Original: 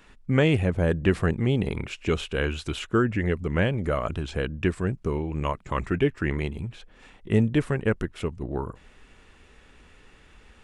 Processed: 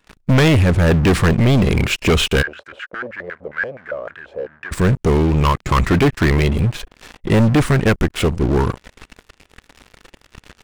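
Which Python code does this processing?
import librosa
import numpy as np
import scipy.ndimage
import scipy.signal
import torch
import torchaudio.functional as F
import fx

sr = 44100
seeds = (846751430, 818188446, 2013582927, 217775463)

y = fx.dynamic_eq(x, sr, hz=620.0, q=1.7, threshold_db=-41.0, ratio=4.0, max_db=-8)
y = fx.leveller(y, sr, passes=5)
y = fx.filter_lfo_bandpass(y, sr, shape='square', hz=fx.line((2.41, 9.1), (4.71, 1.9)), low_hz=550.0, high_hz=1600.0, q=6.6, at=(2.41, 4.71), fade=0.02)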